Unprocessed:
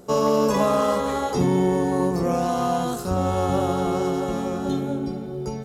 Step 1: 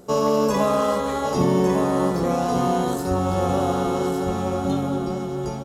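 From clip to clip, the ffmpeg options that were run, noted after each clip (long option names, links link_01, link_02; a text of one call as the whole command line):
ffmpeg -i in.wav -af "aecho=1:1:1154:0.473" out.wav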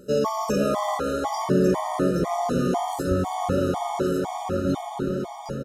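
ffmpeg -i in.wav -filter_complex "[0:a]asplit=6[link_01][link_02][link_03][link_04][link_05][link_06];[link_02]adelay=278,afreqshift=130,volume=-12dB[link_07];[link_03]adelay=556,afreqshift=260,volume=-17.8dB[link_08];[link_04]adelay=834,afreqshift=390,volume=-23.7dB[link_09];[link_05]adelay=1112,afreqshift=520,volume=-29.5dB[link_10];[link_06]adelay=1390,afreqshift=650,volume=-35.4dB[link_11];[link_01][link_07][link_08][link_09][link_10][link_11]amix=inputs=6:normalize=0,afftfilt=real='re*gt(sin(2*PI*2*pts/sr)*(1-2*mod(floor(b*sr/1024/610),2)),0)':imag='im*gt(sin(2*PI*2*pts/sr)*(1-2*mod(floor(b*sr/1024/610),2)),0)':win_size=1024:overlap=0.75" out.wav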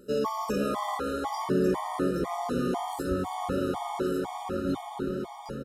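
ffmpeg -i in.wav -af "equalizer=frequency=100:width_type=o:width=0.33:gain=-11,equalizer=frequency=160:width_type=o:width=0.33:gain=-8,equalizer=frequency=630:width_type=o:width=0.33:gain=-9,equalizer=frequency=6300:width_type=o:width=0.33:gain=-8,volume=-3.5dB" out.wav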